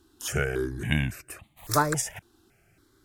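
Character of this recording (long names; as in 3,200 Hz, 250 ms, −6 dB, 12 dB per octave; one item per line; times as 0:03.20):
notches that jump at a steady rate 3.6 Hz 610–1,500 Hz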